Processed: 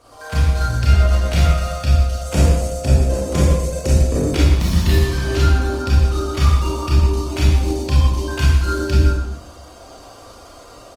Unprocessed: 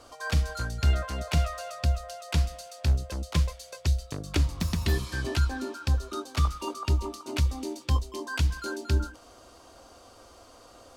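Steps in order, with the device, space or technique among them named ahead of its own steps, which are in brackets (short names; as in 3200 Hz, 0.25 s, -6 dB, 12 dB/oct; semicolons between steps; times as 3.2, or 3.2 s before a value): 2.18–4.27 graphic EQ 250/500/4000/8000 Hz +8/+11/-6/+9 dB; speakerphone in a meeting room (reverb RT60 0.75 s, pre-delay 27 ms, DRR -6 dB; speakerphone echo 0.12 s, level -7 dB; AGC gain up to 4 dB; Opus 24 kbps 48000 Hz)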